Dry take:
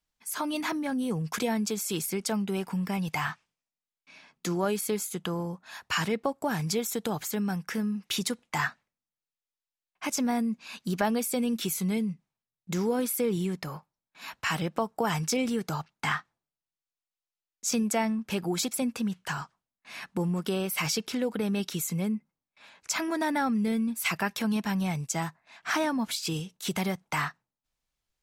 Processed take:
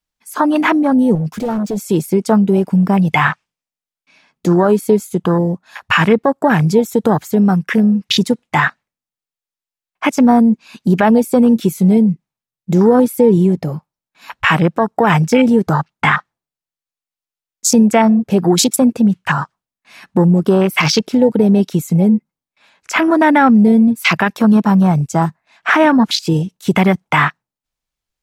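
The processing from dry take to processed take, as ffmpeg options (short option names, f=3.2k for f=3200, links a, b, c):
-filter_complex "[0:a]asettb=1/sr,asplit=3[a][b][c];[a]atrim=end=1.154[d];[b]atrim=start=1.15:end=1.77,asetpts=PTS-STARTPTS,afade=t=in:d=0.004:c=qsin,afade=t=out:st=0.616:d=0.004:c=qsin,asoftclip=type=hard:threshold=-34dB[e];[c]atrim=start=1.766[f];[d][e]acrossfade=d=0.004:c1=hsin:c2=qsin[g];[g][f]acrossfade=d=0.004:c1=qsin:c2=hsin,afwtdn=0.0178,alimiter=level_in=19dB:limit=-1dB:release=50:level=0:latency=1,volume=-1dB"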